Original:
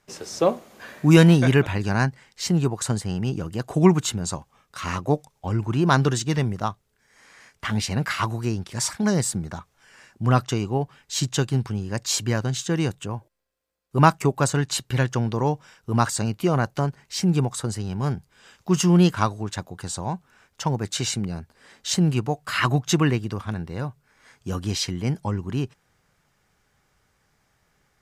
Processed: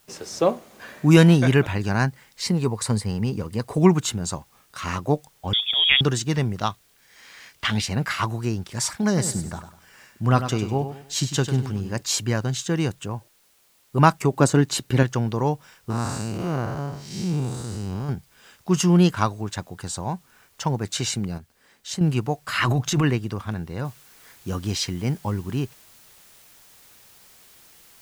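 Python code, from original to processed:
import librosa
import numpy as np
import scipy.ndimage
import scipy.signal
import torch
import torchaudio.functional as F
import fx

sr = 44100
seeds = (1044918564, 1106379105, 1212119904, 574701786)

y = fx.ripple_eq(x, sr, per_octave=0.92, db=7, at=(2.42, 3.78))
y = fx.freq_invert(y, sr, carrier_hz=3500, at=(5.53, 6.01))
y = fx.peak_eq(y, sr, hz=3500.0, db=10.5, octaves=1.5, at=(6.57, 7.8), fade=0.02)
y = fx.echo_feedback(y, sr, ms=99, feedback_pct=33, wet_db=-10, at=(9.16, 12.0), fade=0.02)
y = fx.peak_eq(y, sr, hz=300.0, db=9.0, octaves=1.6, at=(14.33, 15.03))
y = fx.spec_blur(y, sr, span_ms=224.0, at=(15.9, 18.09))
y = fx.transient(y, sr, attack_db=-7, sustain_db=9, at=(22.6, 23.04))
y = fx.noise_floor_step(y, sr, seeds[0], at_s=23.85, before_db=-61, after_db=-52, tilt_db=0.0)
y = fx.edit(y, sr, fx.clip_gain(start_s=21.38, length_s=0.63, db=-7.0), tone=tone)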